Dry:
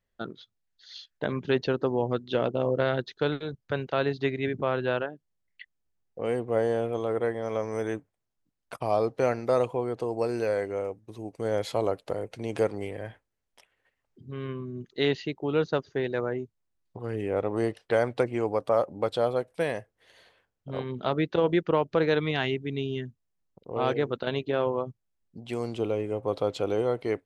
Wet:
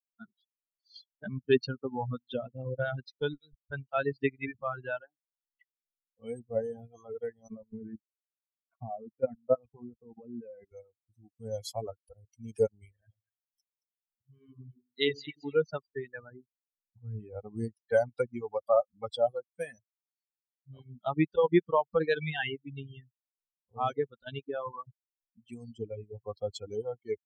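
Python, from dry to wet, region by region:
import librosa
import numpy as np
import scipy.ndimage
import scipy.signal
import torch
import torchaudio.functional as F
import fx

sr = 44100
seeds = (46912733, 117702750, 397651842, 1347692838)

y = fx.chain(x, sr, fx.peak_eq(hz=220.0, db=6.0, octaves=1.6),
    fx.level_steps(step_db=10),
    fx.lowpass(hz=2400.0, slope=12), at=(7.48, 10.72))
y = fx.chain(y, sr, fx.low_shelf(hz=390.0, db=-3.0),
    fx.echo_split(split_hz=1200.0, low_ms=93, high_ms=222, feedback_pct=52, wet_db=-4.5), at=(12.92, 15.56))
y = fx.bin_expand(y, sr, power=3.0)
y = fx.dereverb_blind(y, sr, rt60_s=1.0)
y = y * 10.0 ** (4.5 / 20.0)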